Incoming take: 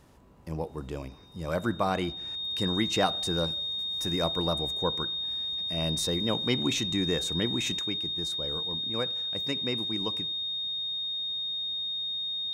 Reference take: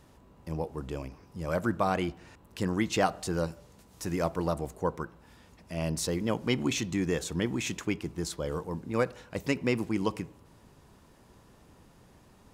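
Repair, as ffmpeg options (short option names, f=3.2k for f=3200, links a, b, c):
-af "bandreject=f=3.7k:w=30,asetnsamples=n=441:p=0,asendcmd='7.79 volume volume 5.5dB',volume=0dB"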